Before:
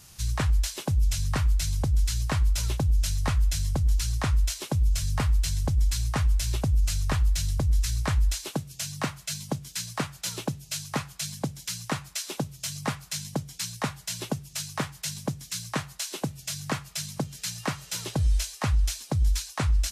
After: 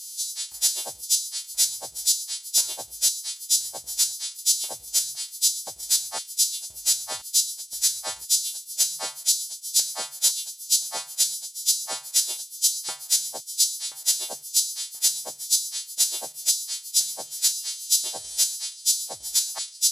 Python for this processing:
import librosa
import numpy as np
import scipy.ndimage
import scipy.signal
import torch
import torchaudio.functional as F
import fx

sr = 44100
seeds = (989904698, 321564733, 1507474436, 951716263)

p1 = fx.freq_snap(x, sr, grid_st=2)
p2 = fx.level_steps(p1, sr, step_db=23)
p3 = p1 + (p2 * librosa.db_to_amplitude(-2.0))
p4 = fx.filter_lfo_highpass(p3, sr, shape='square', hz=0.97, low_hz=730.0, high_hz=3500.0, q=0.94)
y = fx.band_shelf(p4, sr, hz=1700.0, db=-11.0, octaves=1.7)